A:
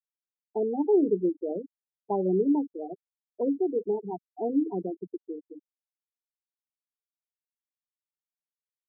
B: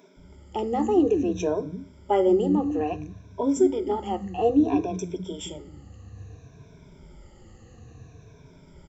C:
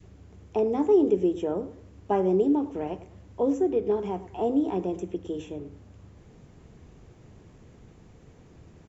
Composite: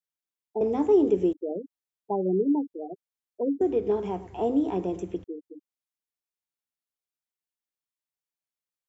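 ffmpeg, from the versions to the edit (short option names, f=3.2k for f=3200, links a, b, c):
-filter_complex "[2:a]asplit=2[a][b];[0:a]asplit=3[c][d][e];[c]atrim=end=0.612[f];[a]atrim=start=0.608:end=1.332[g];[d]atrim=start=1.328:end=3.612[h];[b]atrim=start=3.608:end=5.242[i];[e]atrim=start=5.238[j];[f][g]acrossfade=d=0.004:c1=hsin:c2=hsin[k];[k][h]acrossfade=d=0.004:c1=hsin:c2=hsin[l];[l][i]acrossfade=d=0.004:c1=hsin:c2=hsin[m];[m][j]acrossfade=d=0.004:c1=hsin:c2=hsin"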